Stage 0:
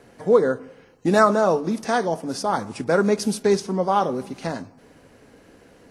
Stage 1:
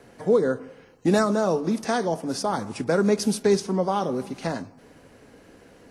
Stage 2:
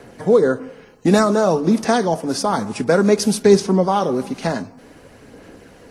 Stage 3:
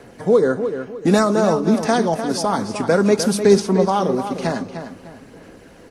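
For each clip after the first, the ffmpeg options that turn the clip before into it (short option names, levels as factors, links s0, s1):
-filter_complex "[0:a]acrossover=split=410|3000[s0][s1][s2];[s1]acompressor=threshold=0.0708:ratio=6[s3];[s0][s3][s2]amix=inputs=3:normalize=0"
-af "aphaser=in_gain=1:out_gain=1:delay=4.8:decay=0.26:speed=0.55:type=sinusoidal,volume=2.11"
-filter_complex "[0:a]asplit=2[s0][s1];[s1]adelay=302,lowpass=f=5000:p=1,volume=0.355,asplit=2[s2][s3];[s3]adelay=302,lowpass=f=5000:p=1,volume=0.33,asplit=2[s4][s5];[s5]adelay=302,lowpass=f=5000:p=1,volume=0.33,asplit=2[s6][s7];[s7]adelay=302,lowpass=f=5000:p=1,volume=0.33[s8];[s0][s2][s4][s6][s8]amix=inputs=5:normalize=0,volume=0.891"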